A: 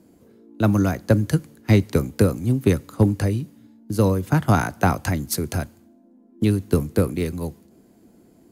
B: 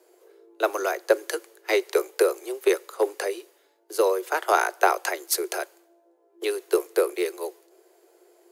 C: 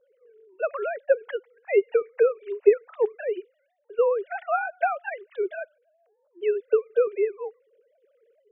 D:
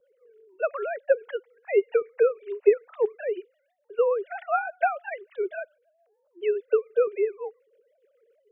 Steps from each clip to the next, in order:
Chebyshev high-pass 350 Hz, order 8; gain +2.5 dB
sine-wave speech
harmonic tremolo 6.9 Hz, depth 50%, crossover 450 Hz; gain +1.5 dB

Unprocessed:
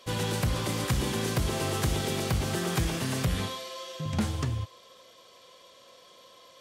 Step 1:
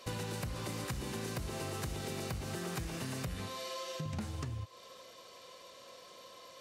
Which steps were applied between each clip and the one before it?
notch 3300 Hz, Q 13; compressor 6:1, threshold -38 dBFS, peak gain reduction 14.5 dB; gain +1 dB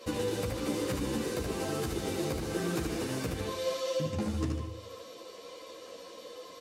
small resonant body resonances 310/460 Hz, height 12 dB, ringing for 45 ms; on a send: feedback echo 75 ms, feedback 47%, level -4.5 dB; on the sum: ensemble effect; gain +5 dB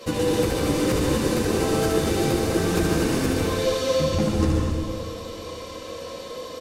octaver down 1 oct, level -6 dB; feedback echo 0.495 s, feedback 52%, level -16.5 dB; plate-style reverb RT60 1.3 s, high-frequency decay 0.75×, pre-delay 0.115 s, DRR 0 dB; gain +7.5 dB

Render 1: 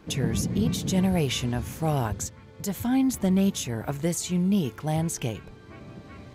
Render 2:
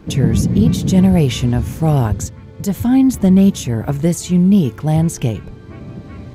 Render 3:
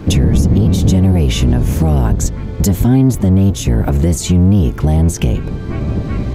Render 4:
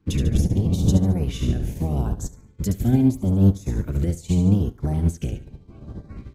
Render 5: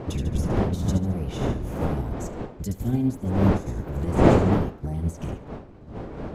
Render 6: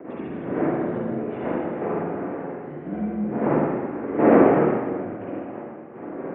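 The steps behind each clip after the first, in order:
low shelf 430 Hz +9.5 dB; gain +4.5 dB
octaver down 1 oct, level +2 dB; compressor 4:1, threshold -19 dBFS, peak gain reduction 13.5 dB; maximiser +13 dB; gain -2.5 dB
LFO notch saw up 0.81 Hz 600–3400 Hz; on a send: feedback echo 72 ms, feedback 45%, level -9 dB; on the sum: upward expander 2.5:1, over -26 dBFS; gain -5 dB
wind noise 440 Hz -21 dBFS; gain -6 dB
mistuned SSB -54 Hz 300–2300 Hz; rotary speaker horn 8 Hz; spring tank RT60 1.7 s, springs 40/47/53 ms, chirp 40 ms, DRR -6.5 dB; gain +1 dB

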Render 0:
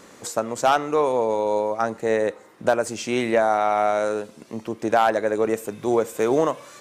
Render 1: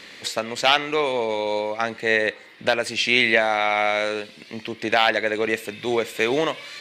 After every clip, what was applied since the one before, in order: band shelf 2900 Hz +16 dB; gain -2.5 dB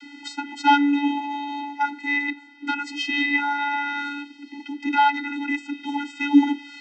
vocoder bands 32, square 286 Hz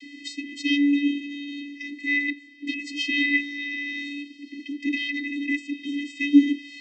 brick-wall FIR band-stop 460–1900 Hz

